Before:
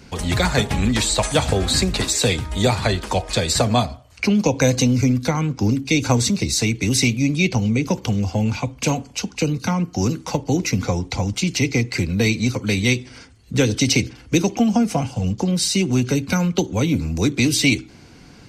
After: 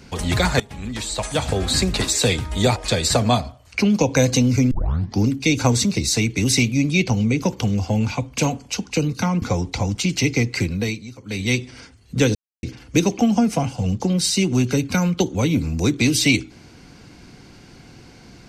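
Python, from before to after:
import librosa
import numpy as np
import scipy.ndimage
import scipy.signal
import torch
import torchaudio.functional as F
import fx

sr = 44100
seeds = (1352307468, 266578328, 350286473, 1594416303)

y = fx.edit(x, sr, fx.fade_in_from(start_s=0.6, length_s=1.32, floor_db=-19.5),
    fx.cut(start_s=2.76, length_s=0.45),
    fx.tape_start(start_s=5.16, length_s=0.48),
    fx.cut(start_s=9.87, length_s=0.93),
    fx.fade_down_up(start_s=12.0, length_s=1.01, db=-17.0, fade_s=0.44),
    fx.silence(start_s=13.73, length_s=0.28), tone=tone)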